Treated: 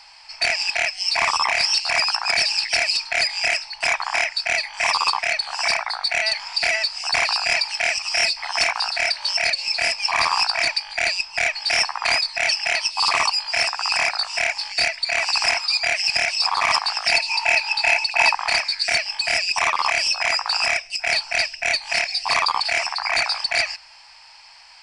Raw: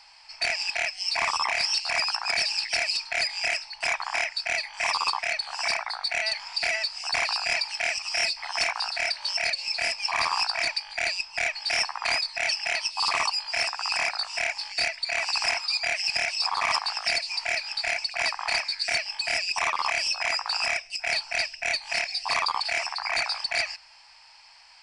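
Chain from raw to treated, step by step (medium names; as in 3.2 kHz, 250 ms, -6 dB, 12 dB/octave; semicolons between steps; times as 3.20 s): rattle on loud lows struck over -49 dBFS, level -30 dBFS; 17.12–18.35 s: small resonant body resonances 900/2600 Hz, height 13 dB, ringing for 25 ms; trim +6 dB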